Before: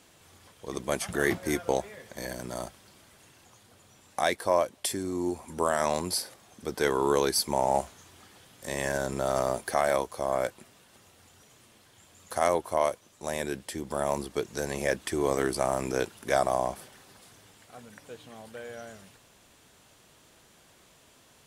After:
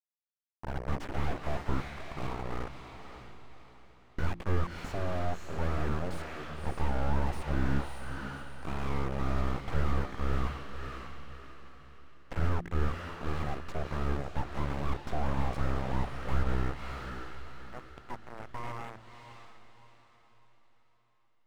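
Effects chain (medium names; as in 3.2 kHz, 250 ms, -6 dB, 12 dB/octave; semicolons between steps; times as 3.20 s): local Wiener filter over 9 samples; in parallel at -2 dB: compression 5:1, threshold -37 dBFS, peak gain reduction 16 dB; on the sum: bass shelf 180 Hz -3 dB; bit crusher 6-bit; steep low-pass 4.2 kHz; full-wave rectifier; de-hum 57.46 Hz, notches 6; on a send: echo that smears into a reverb 581 ms, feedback 40%, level -12.5 dB; on the sum: slew-rate limiter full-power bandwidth 17 Hz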